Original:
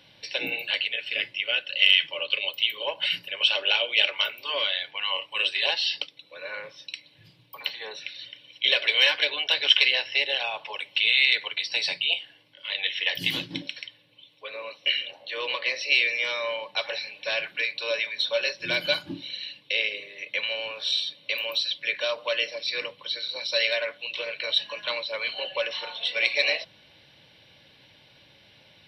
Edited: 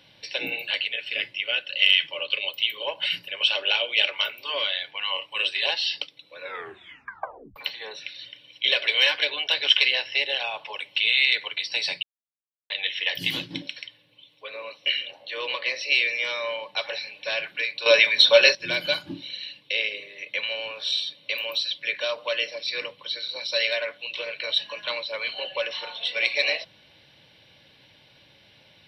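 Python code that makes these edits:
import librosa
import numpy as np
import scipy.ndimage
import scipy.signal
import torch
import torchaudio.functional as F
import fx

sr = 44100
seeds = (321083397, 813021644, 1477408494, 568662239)

y = fx.edit(x, sr, fx.tape_stop(start_s=6.41, length_s=1.15),
    fx.silence(start_s=12.03, length_s=0.67),
    fx.clip_gain(start_s=17.86, length_s=0.69, db=11.0), tone=tone)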